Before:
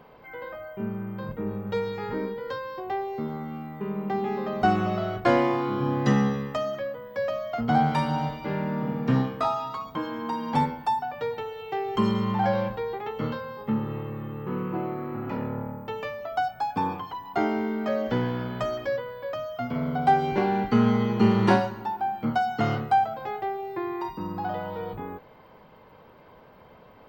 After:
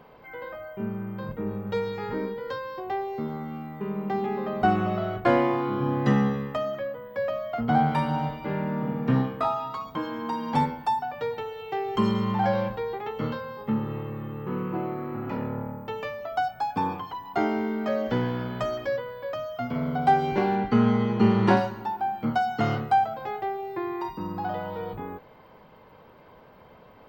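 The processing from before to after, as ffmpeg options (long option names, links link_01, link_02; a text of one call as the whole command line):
ffmpeg -i in.wav -filter_complex "[0:a]asettb=1/sr,asplit=3[link_01][link_02][link_03];[link_01]atrim=end=4.264[link_04];[link_02]atrim=start=4.26:end=9.74,asetpts=PTS-STARTPTS,afade=type=in:duration=0.004:curve=qsin,afade=type=out:start_time=5.476:duration=0.004:curve=qsin,equalizer=frequency=5900:width=1.1:gain=-8.5[link_05];[link_03]atrim=start=9.736[link_06];[link_04][link_05]acrossfade=duration=0.004:curve1=hsin:curve2=qsin[link_07];[link_07][link_06]acrossfade=duration=0.004:curve1=qsin:curve2=hsin,asettb=1/sr,asplit=3[link_08][link_09][link_10];[link_08]atrim=end=20.554[link_11];[link_09]atrim=start=20.55:end=21.57,asetpts=PTS-STARTPTS,afade=type=in:duration=0.004:curve=qsin,afade=type=out:start_time=1.016:duration=0.004:curve=qsin,highshelf=frequency=5700:gain=-9[link_12];[link_10]atrim=start=21.566[link_13];[link_11][link_12]acrossfade=duration=0.004:curve1=hsin:curve2=qsin[link_14];[link_14][link_13]acrossfade=duration=0.004:curve1=qsin:curve2=hsin" out.wav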